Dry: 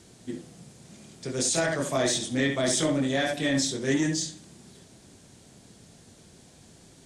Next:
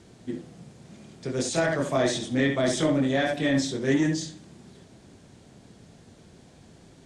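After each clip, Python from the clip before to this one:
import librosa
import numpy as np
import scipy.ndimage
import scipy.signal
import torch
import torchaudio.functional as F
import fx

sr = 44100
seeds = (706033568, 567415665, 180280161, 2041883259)

y = fx.lowpass(x, sr, hz=2500.0, slope=6)
y = F.gain(torch.from_numpy(y), 2.5).numpy()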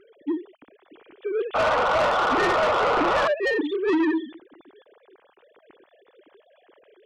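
y = fx.sine_speech(x, sr)
y = fx.spec_paint(y, sr, seeds[0], shape='noise', start_s=1.54, length_s=1.74, low_hz=450.0, high_hz=1500.0, level_db=-22.0)
y = 10.0 ** (-23.0 / 20.0) * np.tanh(y / 10.0 ** (-23.0 / 20.0))
y = F.gain(torch.from_numpy(y), 5.0).numpy()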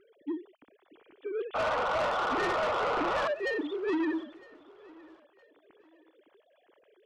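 y = fx.echo_feedback(x, sr, ms=961, feedback_pct=33, wet_db=-23.5)
y = F.gain(torch.from_numpy(y), -8.0).numpy()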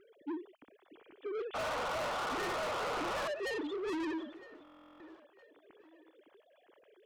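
y = 10.0 ** (-34.5 / 20.0) * np.tanh(x / 10.0 ** (-34.5 / 20.0))
y = fx.buffer_glitch(y, sr, at_s=(4.63,), block=1024, repeats=15)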